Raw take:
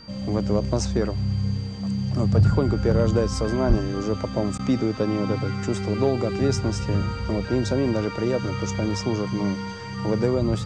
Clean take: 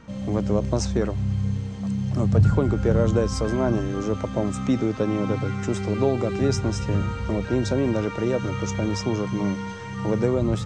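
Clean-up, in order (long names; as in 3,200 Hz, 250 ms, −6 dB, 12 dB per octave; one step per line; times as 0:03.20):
clipped peaks rebuilt −10.5 dBFS
notch filter 4,700 Hz, Q 30
0:03.68–0:03.80: high-pass filter 140 Hz 24 dB per octave
repair the gap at 0:04.58, 10 ms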